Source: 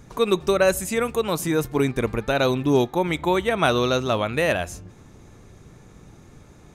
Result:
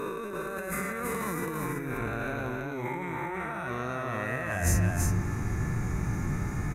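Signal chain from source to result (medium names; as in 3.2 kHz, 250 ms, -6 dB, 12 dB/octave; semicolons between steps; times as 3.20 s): reverse spectral sustain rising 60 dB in 2.25 s; ten-band graphic EQ 500 Hz -9 dB, 2 kHz +5 dB, 4 kHz -8 dB, 8 kHz -5 dB; harmonic-percussive split percussive -18 dB; peaking EQ 3.2 kHz -11.5 dB 0.63 oct; in parallel at -1 dB: peak limiter -19.5 dBFS, peak gain reduction 11.5 dB; on the sum: compressor with a negative ratio -33 dBFS, ratio -1; hard clipper -16 dBFS, distortion -41 dB; delay 331 ms -3.5 dB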